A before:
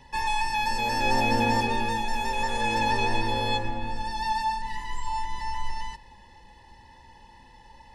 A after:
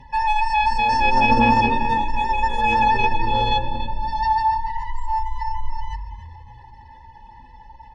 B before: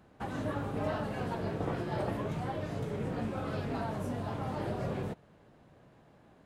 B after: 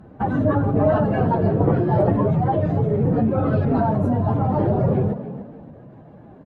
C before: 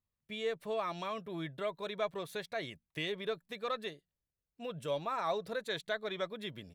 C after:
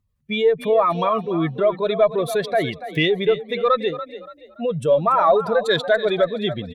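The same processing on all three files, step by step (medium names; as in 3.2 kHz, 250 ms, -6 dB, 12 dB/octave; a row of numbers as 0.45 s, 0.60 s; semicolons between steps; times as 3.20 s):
spectral contrast enhancement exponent 1.7; frequency-shifting echo 286 ms, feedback 33%, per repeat +35 Hz, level -13 dB; Chebyshev shaper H 2 -16 dB, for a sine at -12 dBFS; normalise loudness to -20 LUFS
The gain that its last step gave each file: +8.0 dB, +16.0 dB, +18.5 dB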